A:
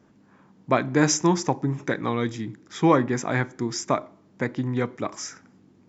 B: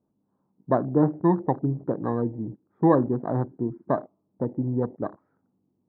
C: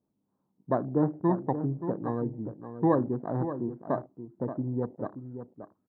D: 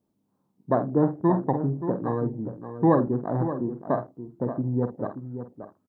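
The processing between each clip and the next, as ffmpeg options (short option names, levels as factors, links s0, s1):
-af "lowpass=f=1000:w=0.5412,lowpass=f=1000:w=1.3066,afwtdn=0.02"
-filter_complex "[0:a]asplit=2[s0][s1];[s1]adelay=577.3,volume=0.316,highshelf=f=4000:g=-13[s2];[s0][s2]amix=inputs=2:normalize=0,volume=0.562"
-filter_complex "[0:a]asplit=2[s0][s1];[s1]adelay=49,volume=0.376[s2];[s0][s2]amix=inputs=2:normalize=0,volume=1.58"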